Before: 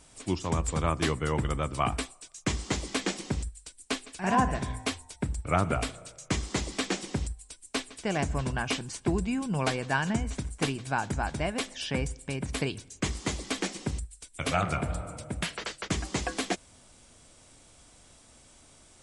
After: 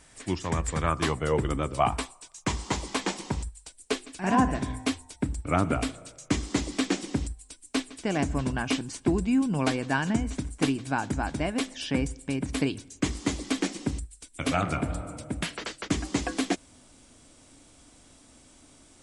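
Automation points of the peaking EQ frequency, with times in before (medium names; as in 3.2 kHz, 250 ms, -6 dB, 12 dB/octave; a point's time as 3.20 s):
peaking EQ +9.5 dB 0.47 oct
0.83 s 1.8 kHz
1.57 s 260 Hz
1.89 s 940 Hz
3.60 s 940 Hz
4.10 s 280 Hz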